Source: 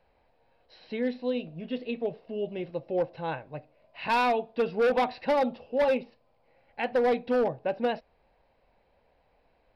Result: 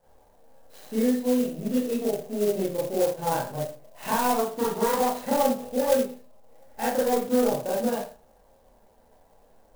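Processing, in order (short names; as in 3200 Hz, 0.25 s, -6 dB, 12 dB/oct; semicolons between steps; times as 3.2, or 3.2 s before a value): 4.35–4.95 self-modulated delay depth 0.33 ms; bell 2400 Hz -14 dB 0.63 oct; compressor, threshold -30 dBFS, peak gain reduction 8 dB; Schroeder reverb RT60 0.39 s, combs from 28 ms, DRR -8.5 dB; clock jitter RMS 0.057 ms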